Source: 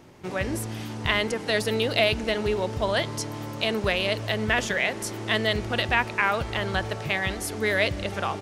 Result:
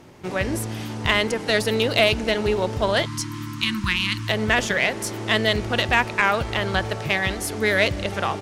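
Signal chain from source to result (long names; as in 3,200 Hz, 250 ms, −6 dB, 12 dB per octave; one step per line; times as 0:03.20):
harmonic generator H 6 −26 dB, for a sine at −6.5 dBFS
time-frequency box erased 0:03.06–0:04.29, 360–890 Hz
level +3.5 dB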